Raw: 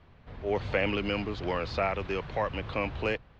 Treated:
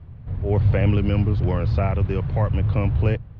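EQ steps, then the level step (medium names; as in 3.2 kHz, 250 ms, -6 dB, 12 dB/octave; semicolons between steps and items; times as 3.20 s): tilt EQ -2.5 dB/octave; peaking EQ 110 Hz +14 dB 1.3 oct; 0.0 dB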